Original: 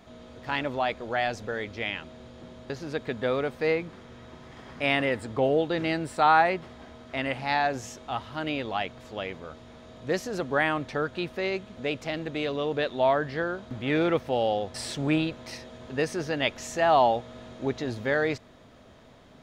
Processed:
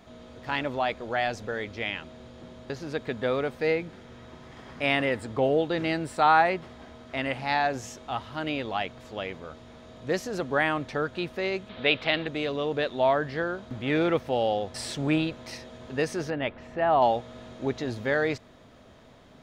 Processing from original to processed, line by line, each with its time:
3.59–4.07 notch 1100 Hz, Q 5.1
11.69–12.27 EQ curve 230 Hz 0 dB, 3800 Hz +12 dB, 6500 Hz -13 dB
16.3–17.02 air absorption 460 m

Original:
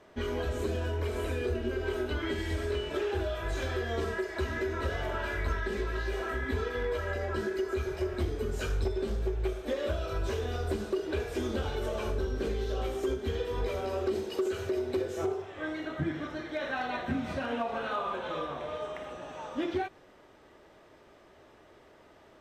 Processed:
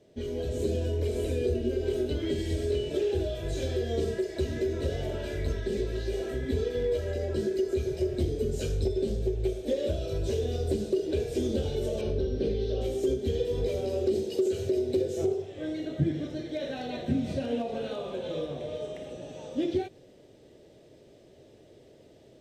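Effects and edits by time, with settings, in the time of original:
12.01–12.81 polynomial smoothing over 15 samples
whole clip: graphic EQ 125/250/500/1000/2000/4000/8000 Hz +10/+3/+8/-10/-3/+4/+5 dB; AGC gain up to 5 dB; bell 1300 Hz -8.5 dB 0.73 oct; gain -6.5 dB

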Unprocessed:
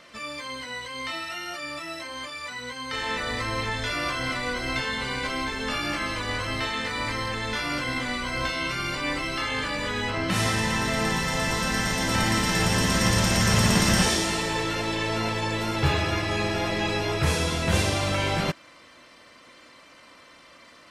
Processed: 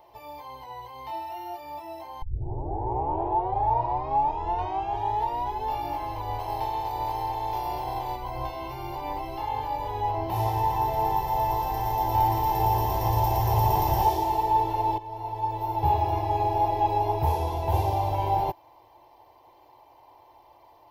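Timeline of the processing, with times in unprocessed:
2.22 tape start 3.46 s
6.38–8.15 spectral limiter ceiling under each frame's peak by 14 dB
14.98–16.13 fade in, from -16 dB
whole clip: EQ curve 120 Hz 0 dB, 210 Hz -26 dB, 370 Hz +1 dB, 540 Hz -8 dB, 870 Hz +14 dB, 1300 Hz -23 dB, 2800 Hz -16 dB, 5700 Hz -18 dB, 8900 Hz -25 dB, 14000 Hz +11 dB

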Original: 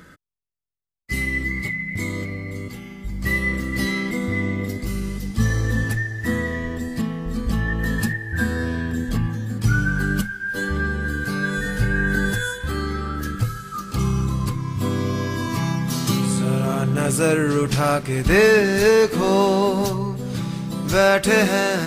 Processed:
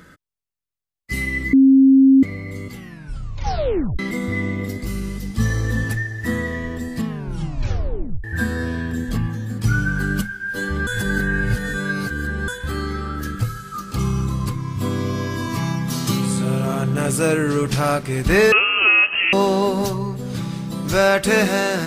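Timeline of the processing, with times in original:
1.53–2.23 bleep 268 Hz -7.5 dBFS
2.76 tape stop 1.23 s
7.07 tape stop 1.17 s
10.87–12.48 reverse
18.52–19.33 inverted band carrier 3000 Hz

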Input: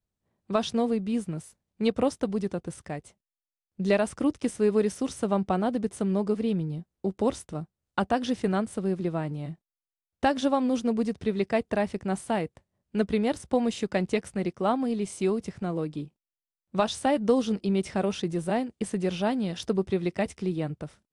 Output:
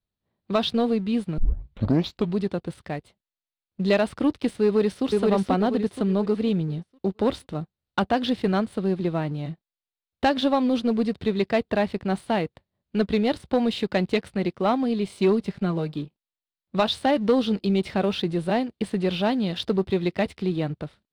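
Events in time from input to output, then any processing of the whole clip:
1.38 tape start 1.02 s
4.64–5.06 echo throw 0.48 s, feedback 35%, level -1.5 dB
15.15–15.93 comb 5 ms, depth 54%
whole clip: resonant high shelf 5100 Hz -7 dB, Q 3; sample leveller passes 1

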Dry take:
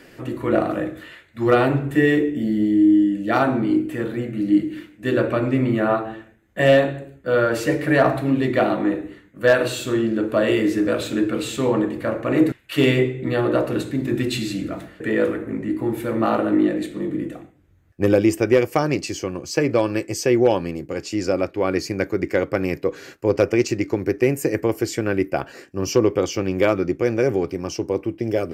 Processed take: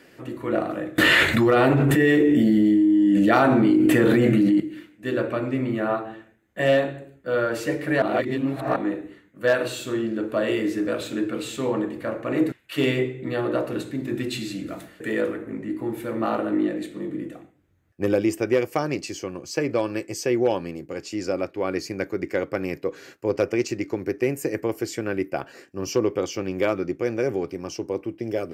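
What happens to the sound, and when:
0.98–4.6 fast leveller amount 100%
8.02–8.76 reverse
14.68–15.21 high shelf 4800 Hz +10.5 dB
whole clip: low shelf 67 Hz -12 dB; gain -4.5 dB

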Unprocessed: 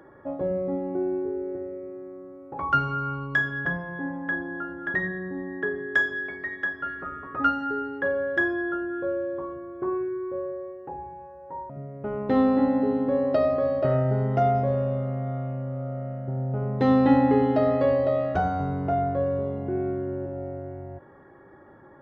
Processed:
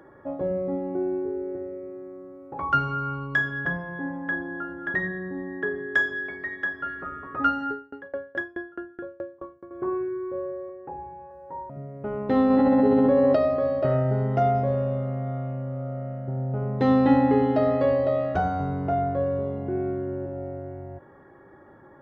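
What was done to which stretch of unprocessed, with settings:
7.71–9.71 dB-ramp tremolo decaying 4.7 Hz, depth 29 dB
10.69–11.31 elliptic low-pass 2600 Hz
12.5–13.36 fast leveller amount 100%

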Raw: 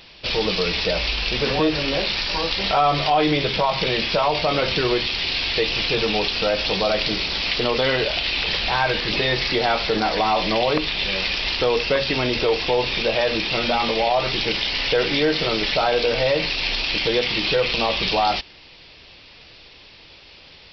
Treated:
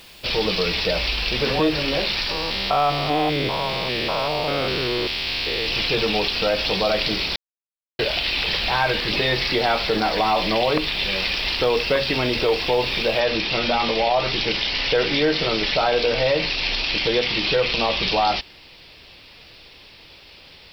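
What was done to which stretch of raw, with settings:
2.31–5.67 stepped spectrum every 0.2 s
7.36–7.99 mute
13.2 noise floor step -52 dB -68 dB

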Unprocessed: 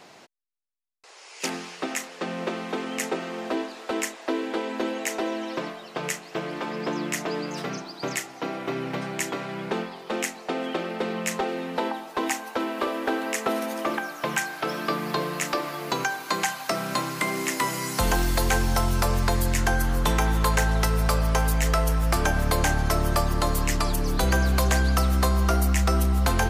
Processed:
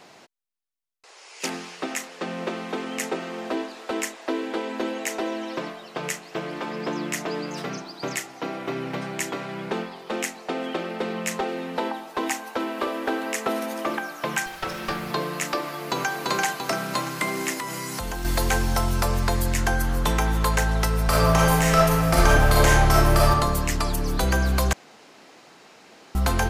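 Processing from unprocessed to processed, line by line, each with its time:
14.46–15.11 minimum comb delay 5.3 ms
15.62–16.18 echo throw 0.34 s, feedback 55%, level -2 dB
17.53–18.25 compressor, threshold -27 dBFS
21.06–23.29 reverb throw, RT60 1.1 s, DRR -5 dB
24.73–26.15 room tone

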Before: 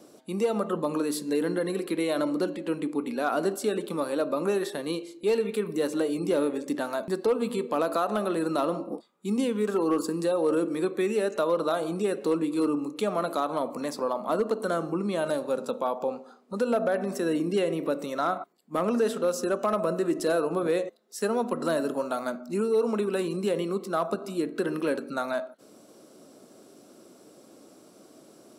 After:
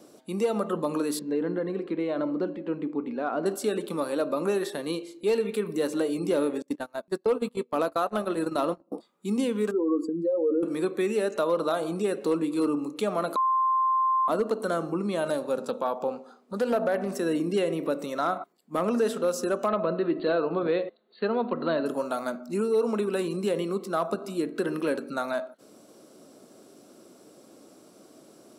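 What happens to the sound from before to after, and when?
1.19–3.46 tape spacing loss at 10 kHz 31 dB
6.62–8.92 gate -29 dBFS, range -29 dB
9.71–10.63 spectral contrast raised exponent 2.1
13.36–14.28 bleep 1050 Hz -20.5 dBFS
15.57–17.12 Doppler distortion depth 0.16 ms
19.68–21.86 brick-wall FIR low-pass 4600 Hz

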